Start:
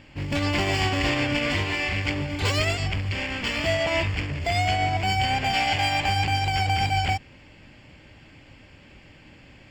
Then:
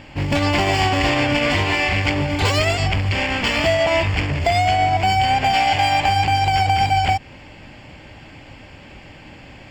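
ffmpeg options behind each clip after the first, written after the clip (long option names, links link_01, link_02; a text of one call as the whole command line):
ffmpeg -i in.wav -af "equalizer=frequency=790:width_type=o:width=0.84:gain=5.5,acompressor=threshold=-23dB:ratio=3,volume=8dB" out.wav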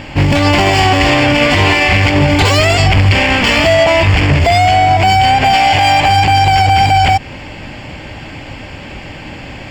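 ffmpeg -i in.wav -filter_complex "[0:a]asplit=2[link_01][link_02];[link_02]asoftclip=type=hard:threshold=-20dB,volume=-10dB[link_03];[link_01][link_03]amix=inputs=2:normalize=0,alimiter=level_in=11dB:limit=-1dB:release=50:level=0:latency=1,volume=-1dB" out.wav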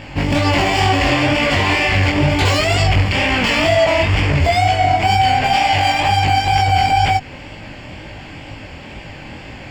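ffmpeg -i in.wav -af "flanger=delay=18:depth=6.9:speed=2.1,volume=-2dB" out.wav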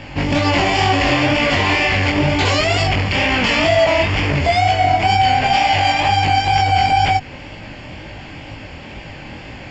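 ffmpeg -i in.wav -filter_complex "[0:a]acrossover=split=150[link_01][link_02];[link_01]asoftclip=type=tanh:threshold=-19.5dB[link_03];[link_03][link_02]amix=inputs=2:normalize=0,aresample=16000,aresample=44100" out.wav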